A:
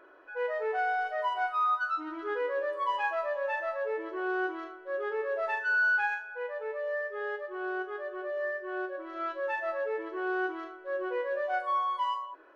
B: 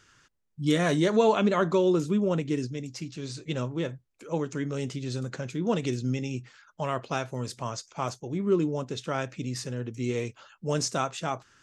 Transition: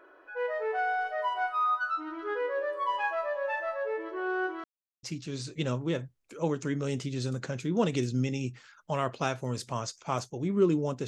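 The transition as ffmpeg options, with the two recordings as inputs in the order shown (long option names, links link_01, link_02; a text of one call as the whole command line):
ffmpeg -i cue0.wav -i cue1.wav -filter_complex "[0:a]apad=whole_dur=11.07,atrim=end=11.07,asplit=2[link_01][link_02];[link_01]atrim=end=4.64,asetpts=PTS-STARTPTS,afade=type=out:start_time=4.636:duration=0.004:curve=hsin[link_03];[link_02]atrim=start=4.64:end=5.03,asetpts=PTS-STARTPTS,volume=0[link_04];[1:a]atrim=start=2.93:end=8.97,asetpts=PTS-STARTPTS,afade=type=in:duration=0.004:curve=hsin[link_05];[link_03][link_04][link_05]concat=n=3:v=0:a=1" out.wav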